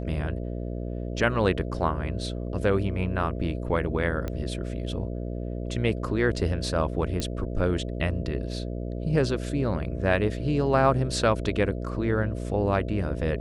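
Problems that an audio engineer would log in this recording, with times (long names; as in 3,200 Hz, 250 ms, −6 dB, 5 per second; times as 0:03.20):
mains buzz 60 Hz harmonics 11 −32 dBFS
0:04.28: click −18 dBFS
0:07.20: click −15 dBFS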